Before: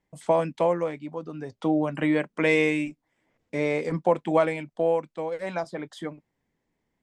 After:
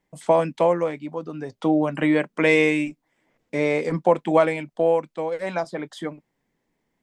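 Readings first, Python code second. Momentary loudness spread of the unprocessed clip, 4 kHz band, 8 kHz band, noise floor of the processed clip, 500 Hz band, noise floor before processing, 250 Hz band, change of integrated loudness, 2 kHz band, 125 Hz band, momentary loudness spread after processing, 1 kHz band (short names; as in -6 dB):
13 LU, +4.0 dB, n/a, -76 dBFS, +4.0 dB, -79 dBFS, +3.5 dB, +4.0 dB, +4.0 dB, +2.5 dB, 14 LU, +4.0 dB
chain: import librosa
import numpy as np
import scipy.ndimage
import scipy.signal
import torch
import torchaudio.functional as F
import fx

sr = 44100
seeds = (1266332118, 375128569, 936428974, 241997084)

y = fx.peak_eq(x, sr, hz=73.0, db=-12.5, octaves=0.78)
y = y * librosa.db_to_amplitude(4.0)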